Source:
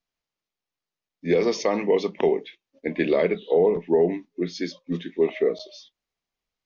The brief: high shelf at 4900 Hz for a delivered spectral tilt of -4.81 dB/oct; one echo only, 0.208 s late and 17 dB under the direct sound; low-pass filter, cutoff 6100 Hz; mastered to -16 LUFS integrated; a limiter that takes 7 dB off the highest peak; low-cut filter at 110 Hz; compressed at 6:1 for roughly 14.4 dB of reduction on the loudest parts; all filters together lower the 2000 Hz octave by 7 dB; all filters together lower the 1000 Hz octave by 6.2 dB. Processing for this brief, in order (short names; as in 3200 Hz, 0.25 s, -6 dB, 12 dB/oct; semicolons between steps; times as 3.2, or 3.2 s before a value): HPF 110 Hz; LPF 6100 Hz; bell 1000 Hz -8 dB; bell 2000 Hz -7.5 dB; high shelf 4900 Hz +8 dB; compressor 6:1, threshold -33 dBFS; limiter -28.5 dBFS; echo 0.208 s -17 dB; gain +23.5 dB